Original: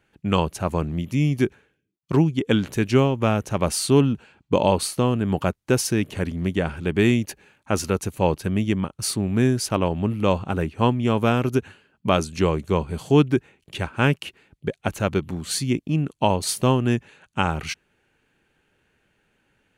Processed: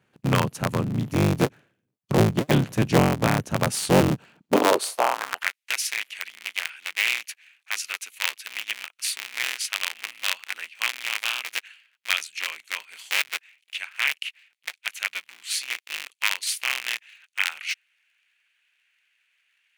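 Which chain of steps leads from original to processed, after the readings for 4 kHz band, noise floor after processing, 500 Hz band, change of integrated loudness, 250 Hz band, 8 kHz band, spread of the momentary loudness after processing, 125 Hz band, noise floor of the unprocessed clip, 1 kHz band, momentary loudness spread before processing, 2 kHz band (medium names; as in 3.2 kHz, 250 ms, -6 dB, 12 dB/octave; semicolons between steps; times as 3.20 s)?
+3.5 dB, -77 dBFS, -5.5 dB, -3.0 dB, -6.5 dB, 0.0 dB, 13 LU, -5.0 dB, -74 dBFS, -2.5 dB, 8 LU, +5.0 dB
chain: cycle switcher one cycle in 3, inverted; high-pass sweep 130 Hz -> 2.3 kHz, 4.25–5.54 s; trim -2.5 dB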